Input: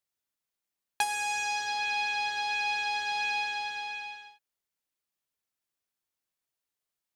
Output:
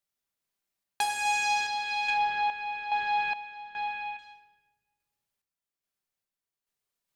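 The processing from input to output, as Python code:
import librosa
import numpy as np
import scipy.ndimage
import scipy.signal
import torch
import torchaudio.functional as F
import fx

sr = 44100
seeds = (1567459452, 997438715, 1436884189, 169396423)

y = fx.lowpass(x, sr, hz=2100.0, slope=12, at=(2.1, 4.19))
y = fx.room_shoebox(y, sr, seeds[0], volume_m3=880.0, walls='mixed', distance_m=1.2)
y = fx.tremolo_random(y, sr, seeds[1], hz=2.4, depth_pct=80)
y = y * 10.0 ** (2.5 / 20.0)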